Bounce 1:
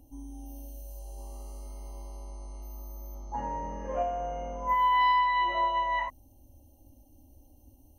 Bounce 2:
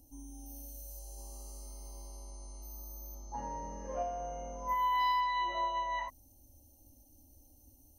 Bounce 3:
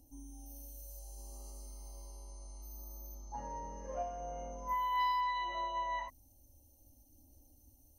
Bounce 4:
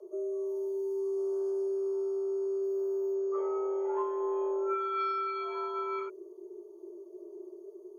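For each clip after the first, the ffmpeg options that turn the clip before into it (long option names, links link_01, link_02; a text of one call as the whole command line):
ffmpeg -i in.wav -af "highshelf=frequency=3700:width_type=q:width=1.5:gain=9.5,volume=-6dB" out.wav
ffmpeg -i in.wav -af "aphaser=in_gain=1:out_gain=1:delay=2.2:decay=0.22:speed=0.68:type=sinusoidal,volume=-3.5dB" out.wav
ffmpeg -i in.wav -af "aemphasis=mode=reproduction:type=riaa,afreqshift=340" out.wav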